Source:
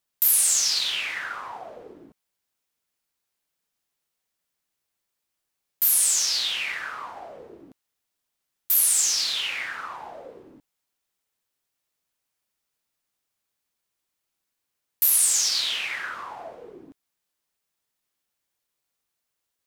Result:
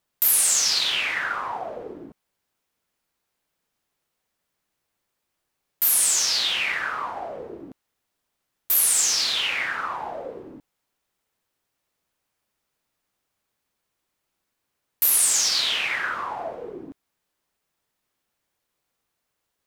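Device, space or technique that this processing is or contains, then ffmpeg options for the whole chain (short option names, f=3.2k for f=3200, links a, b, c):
behind a face mask: -af "highshelf=f=2.5k:g=-8,volume=8dB"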